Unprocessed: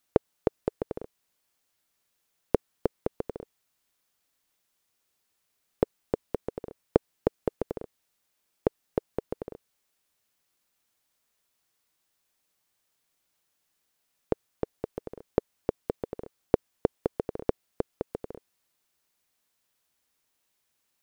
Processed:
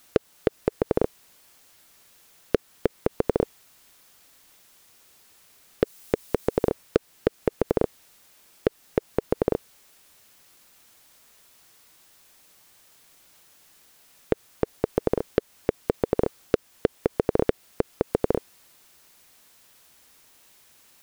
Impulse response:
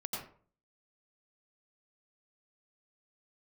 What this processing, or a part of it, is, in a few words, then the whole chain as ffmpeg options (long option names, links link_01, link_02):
loud club master: -filter_complex "[0:a]acompressor=threshold=-28dB:ratio=1.5,asoftclip=type=hard:threshold=-13dB,alimiter=level_in=25dB:limit=-1dB:release=50:level=0:latency=1,asettb=1/sr,asplit=3[link_01][link_02][link_03];[link_01]atrim=end=5.834[link_04];[link_02]atrim=start=5.83:end=6.69,asetpts=PTS-STARTPTS,afade=type=in:duration=0.004:curve=qsin,afade=type=out:start_time=0.856:duration=0.004:curve=qsin,highshelf=frequency=4100:gain=8[link_05];[link_03]atrim=start=6.686[link_06];[link_04][link_05]acrossfade=duration=0.004:curve1=hsin:curve2=qsin[link_07];[link_07][link_06]acrossfade=duration=0.004:curve1=qsin:curve2=hsin,volume=-5dB"